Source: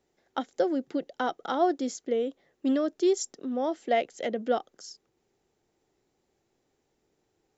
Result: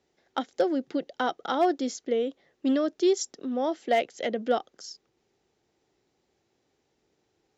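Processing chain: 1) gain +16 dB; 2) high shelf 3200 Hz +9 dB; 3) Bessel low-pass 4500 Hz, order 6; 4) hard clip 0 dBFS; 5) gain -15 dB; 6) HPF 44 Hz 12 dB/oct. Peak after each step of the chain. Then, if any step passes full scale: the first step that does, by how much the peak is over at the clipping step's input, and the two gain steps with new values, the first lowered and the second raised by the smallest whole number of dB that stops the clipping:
+3.0, +3.5, +3.5, 0.0, -15.0, -14.0 dBFS; step 1, 3.5 dB; step 1 +12 dB, step 5 -11 dB

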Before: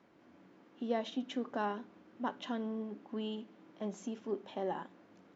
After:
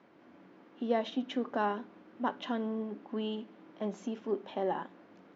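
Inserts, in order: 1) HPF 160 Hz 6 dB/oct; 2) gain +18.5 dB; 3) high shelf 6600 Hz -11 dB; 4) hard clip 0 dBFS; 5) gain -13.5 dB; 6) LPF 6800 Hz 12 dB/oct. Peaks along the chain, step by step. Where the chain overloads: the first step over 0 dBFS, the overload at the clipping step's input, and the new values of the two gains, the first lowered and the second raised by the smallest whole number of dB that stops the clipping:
-23.0, -4.5, -4.5, -4.5, -18.0, -18.0 dBFS; no overload

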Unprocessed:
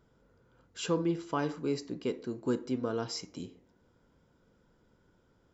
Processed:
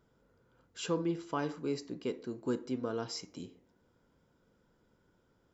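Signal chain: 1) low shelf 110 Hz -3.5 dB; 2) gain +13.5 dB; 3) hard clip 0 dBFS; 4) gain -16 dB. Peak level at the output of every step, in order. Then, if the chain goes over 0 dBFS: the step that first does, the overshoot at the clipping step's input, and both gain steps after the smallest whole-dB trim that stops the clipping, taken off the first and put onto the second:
-18.0, -4.5, -4.5, -20.5 dBFS; no overload

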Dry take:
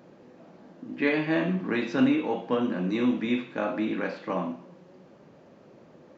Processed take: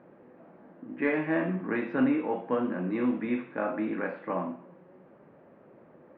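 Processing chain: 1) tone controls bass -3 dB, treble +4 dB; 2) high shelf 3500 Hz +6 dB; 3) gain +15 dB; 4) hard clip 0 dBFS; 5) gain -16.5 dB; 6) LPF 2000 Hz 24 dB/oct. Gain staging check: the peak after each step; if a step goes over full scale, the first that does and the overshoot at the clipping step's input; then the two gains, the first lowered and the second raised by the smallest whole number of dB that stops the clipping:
-12.0, -11.5, +3.5, 0.0, -16.5, -15.5 dBFS; step 3, 3.5 dB; step 3 +11 dB, step 5 -12.5 dB

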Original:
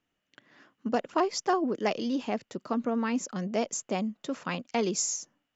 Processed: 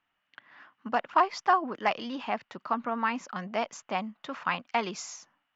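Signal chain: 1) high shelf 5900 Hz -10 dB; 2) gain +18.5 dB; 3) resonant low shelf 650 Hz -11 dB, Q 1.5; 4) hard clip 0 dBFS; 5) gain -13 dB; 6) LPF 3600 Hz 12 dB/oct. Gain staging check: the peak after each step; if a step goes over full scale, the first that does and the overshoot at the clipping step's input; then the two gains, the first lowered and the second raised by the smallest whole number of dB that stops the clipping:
-14.0, +4.5, +3.5, 0.0, -13.0, -12.5 dBFS; step 2, 3.5 dB; step 2 +14.5 dB, step 5 -9 dB

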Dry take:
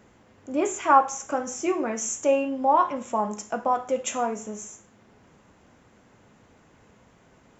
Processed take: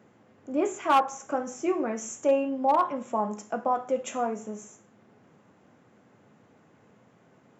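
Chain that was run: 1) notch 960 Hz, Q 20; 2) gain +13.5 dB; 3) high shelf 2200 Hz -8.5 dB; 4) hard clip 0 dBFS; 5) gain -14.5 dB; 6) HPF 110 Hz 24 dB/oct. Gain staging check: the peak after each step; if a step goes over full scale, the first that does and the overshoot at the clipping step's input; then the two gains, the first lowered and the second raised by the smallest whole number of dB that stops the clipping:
-5.5, +8.0, +7.0, 0.0, -14.5, -11.5 dBFS; step 2, 7.0 dB; step 2 +6.5 dB, step 5 -7.5 dB

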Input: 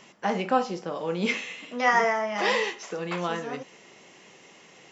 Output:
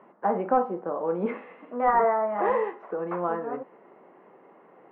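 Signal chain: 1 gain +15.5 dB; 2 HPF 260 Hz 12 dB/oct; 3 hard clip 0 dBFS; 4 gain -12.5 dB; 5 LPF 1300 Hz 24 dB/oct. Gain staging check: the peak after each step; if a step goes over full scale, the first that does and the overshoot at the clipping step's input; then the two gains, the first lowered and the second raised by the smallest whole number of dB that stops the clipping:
+7.0, +6.0, 0.0, -12.5, -11.0 dBFS; step 1, 6.0 dB; step 1 +9.5 dB, step 4 -6.5 dB

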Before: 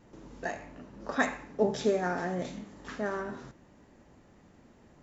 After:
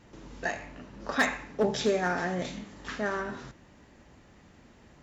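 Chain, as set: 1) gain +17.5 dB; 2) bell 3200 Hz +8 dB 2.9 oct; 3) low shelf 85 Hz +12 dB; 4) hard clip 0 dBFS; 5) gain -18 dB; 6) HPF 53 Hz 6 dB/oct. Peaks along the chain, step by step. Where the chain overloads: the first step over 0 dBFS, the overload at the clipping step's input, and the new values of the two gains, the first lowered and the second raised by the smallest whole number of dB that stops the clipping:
+4.5, +8.5, +8.0, 0.0, -18.0, -16.5 dBFS; step 1, 8.0 dB; step 1 +9.5 dB, step 5 -10 dB

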